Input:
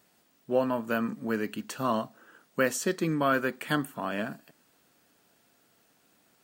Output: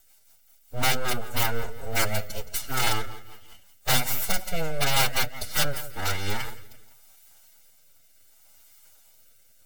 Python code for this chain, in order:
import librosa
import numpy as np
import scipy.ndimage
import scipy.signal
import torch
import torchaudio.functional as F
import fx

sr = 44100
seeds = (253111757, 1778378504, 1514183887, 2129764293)

p1 = np.abs(x)
p2 = fx.high_shelf(p1, sr, hz=5000.0, db=12.0)
p3 = p2 + fx.echo_feedback(p2, sr, ms=114, feedback_pct=38, wet_db=-15.0, dry=0)
p4 = fx.rotary_switch(p3, sr, hz=8.0, then_hz=1.0, switch_at_s=3.63)
p5 = fx.peak_eq(p4, sr, hz=180.0, db=-5.5, octaves=0.32)
p6 = fx.rider(p5, sr, range_db=10, speed_s=0.5)
p7 = p5 + F.gain(torch.from_numpy(p6), -2.0).numpy()
p8 = (np.mod(10.0 ** (14.5 / 20.0) * p7 + 1.0, 2.0) - 1.0) / 10.0 ** (14.5 / 20.0)
p9 = p8 + 0.48 * np.pad(p8, (int(1.4 * sr / 1000.0), 0))[:len(p8)]
p10 = fx.stretch_vocoder(p9, sr, factor=1.5)
y = fx.hum_notches(p10, sr, base_hz=60, count=2)